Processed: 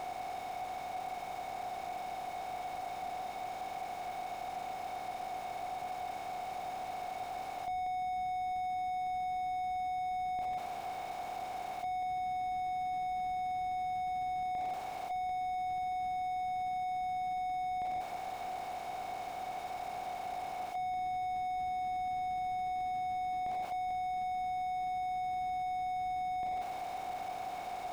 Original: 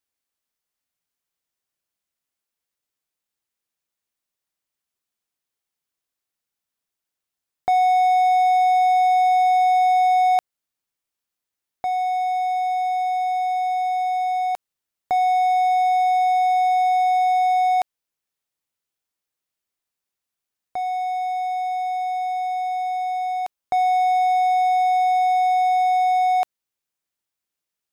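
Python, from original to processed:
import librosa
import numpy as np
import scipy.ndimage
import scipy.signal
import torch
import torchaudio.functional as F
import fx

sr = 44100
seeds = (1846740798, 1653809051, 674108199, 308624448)

y = fx.bin_compress(x, sr, power=0.2)
y = y + 10.0 ** (-10.5 / 20.0) * np.pad(y, (int(185 * sr / 1000.0), 0))[:len(y)]
y = fx.slew_limit(y, sr, full_power_hz=24.0)
y = y * 10.0 ** (-5.0 / 20.0)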